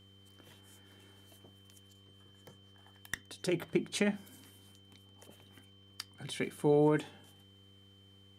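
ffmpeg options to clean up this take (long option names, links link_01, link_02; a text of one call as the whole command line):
ffmpeg -i in.wav -af "bandreject=frequency=98:width_type=h:width=4,bandreject=frequency=196:width_type=h:width=4,bandreject=frequency=294:width_type=h:width=4,bandreject=frequency=392:width_type=h:width=4,bandreject=frequency=490:width_type=h:width=4,bandreject=frequency=3100:width=30" out.wav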